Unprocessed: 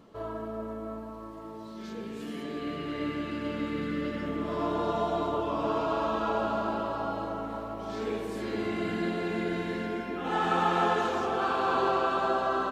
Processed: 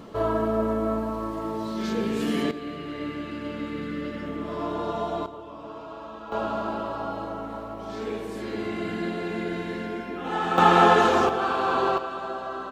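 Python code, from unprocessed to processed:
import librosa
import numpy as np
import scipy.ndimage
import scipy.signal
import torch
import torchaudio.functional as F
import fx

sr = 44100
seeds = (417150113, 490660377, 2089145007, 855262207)

y = fx.gain(x, sr, db=fx.steps((0.0, 12.0), (2.51, 0.0), (5.26, -10.5), (6.32, 1.0), (10.58, 9.5), (11.29, 3.0), (11.98, -5.0)))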